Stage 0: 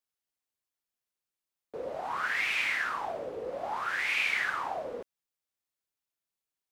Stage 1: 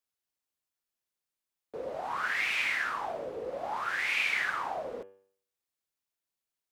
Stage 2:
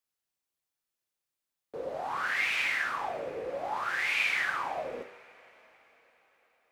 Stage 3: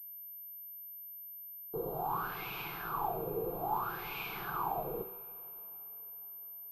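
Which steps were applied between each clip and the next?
hum removal 96.93 Hz, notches 34
coupled-rooms reverb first 0.36 s, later 4.8 s, from −21 dB, DRR 8 dB
spectral tilt −4 dB per octave; phaser with its sweep stopped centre 380 Hz, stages 8; switching amplifier with a slow clock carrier 13,000 Hz

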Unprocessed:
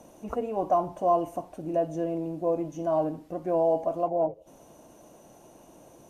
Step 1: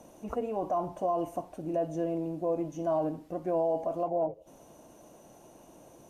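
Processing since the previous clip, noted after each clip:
brickwall limiter −20 dBFS, peak gain reduction 7 dB
level −1.5 dB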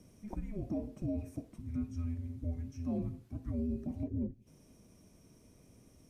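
frequency shifter −420 Hz
level −6.5 dB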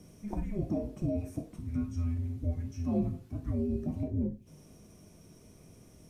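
reverb whose tail is shaped and stops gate 120 ms falling, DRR 4.5 dB
level +4.5 dB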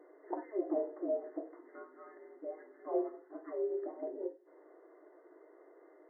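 linear-phase brick-wall band-pass 300–2,100 Hz
level +4 dB

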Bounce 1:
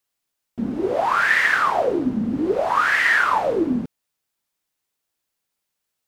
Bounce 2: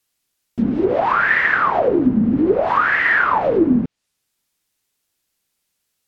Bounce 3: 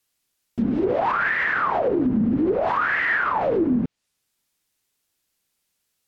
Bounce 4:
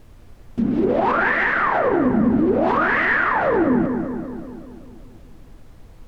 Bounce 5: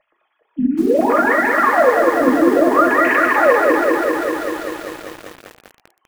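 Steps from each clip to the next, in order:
parametric band 850 Hz −5.5 dB 2.2 octaves; treble cut that deepens with the level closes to 1,700 Hz, closed at −20 dBFS; level +8 dB
brickwall limiter −12.5 dBFS, peak gain reduction 7.5 dB; level −1.5 dB
background noise brown −45 dBFS; feedback echo with a low-pass in the loop 193 ms, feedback 62%, low-pass 2,500 Hz, level −6 dB; level +2 dB
three sine waves on the formant tracks; convolution reverb RT60 0.55 s, pre-delay 4 ms, DRR 2.5 dB; feedback echo at a low word length 197 ms, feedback 80%, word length 6 bits, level −3 dB; level −1 dB

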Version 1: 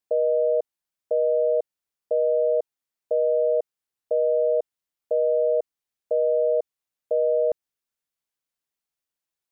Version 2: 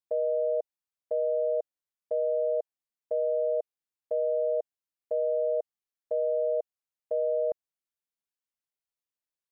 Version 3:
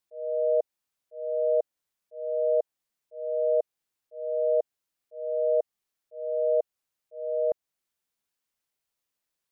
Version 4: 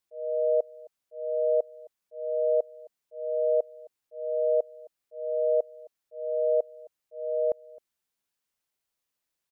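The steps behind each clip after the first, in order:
dynamic equaliser 650 Hz, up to +4 dB, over −37 dBFS, Q 1.8; level −9 dB
volume swells 693 ms; level +8.5 dB
single-tap delay 264 ms −23 dB

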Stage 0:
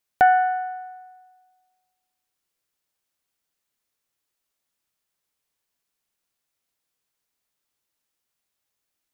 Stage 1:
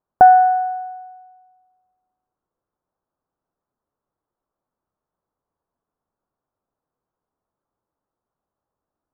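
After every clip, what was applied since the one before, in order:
inverse Chebyshev low-pass filter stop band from 2,400 Hz, stop band 40 dB
level +7.5 dB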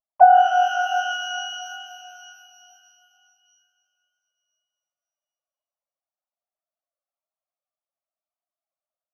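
three sine waves on the formant tracks
spectral tilt −4.5 dB per octave
reverb with rising layers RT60 2.9 s, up +12 semitones, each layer −8 dB, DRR 4 dB
level −3.5 dB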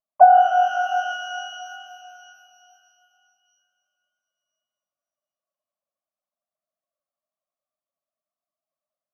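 hollow resonant body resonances 210/590/1,100 Hz, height 13 dB, ringing for 20 ms
level −6.5 dB

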